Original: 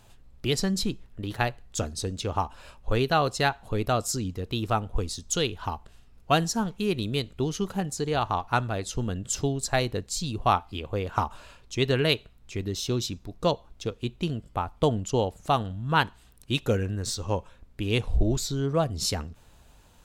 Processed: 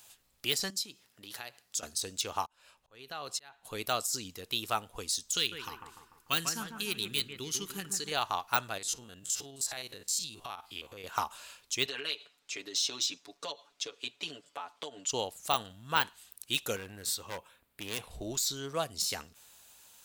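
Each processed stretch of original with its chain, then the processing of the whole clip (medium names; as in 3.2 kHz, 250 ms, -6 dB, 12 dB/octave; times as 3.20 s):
0.70–1.83 s: peaking EQ 5.1 kHz +5 dB 0.41 oct + compression 5:1, threshold -35 dBFS + high-pass 110 Hz
2.46–3.65 s: treble shelf 4.7 kHz -9 dB + compression 16:1, threshold -24 dBFS + slow attack 546 ms
5.37–8.12 s: peaking EQ 690 Hz -14 dB 0.91 oct + bucket-brigade echo 147 ms, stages 2048, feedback 49%, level -6 dB
8.78–11.04 s: spectrogram pixelated in time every 50 ms + compression, threshold -32 dBFS
11.86–15.11 s: three-band isolator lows -21 dB, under 230 Hz, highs -19 dB, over 7.4 kHz + comb 7 ms, depth 93% + compression 8:1, threshold -29 dBFS
16.76–18.11 s: high-pass 41 Hz 6 dB/octave + peaking EQ 6.1 kHz -11.5 dB 1 oct + hard clipper -26.5 dBFS
whole clip: de-esser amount 70%; tilt EQ +4.5 dB/octave; trim -5 dB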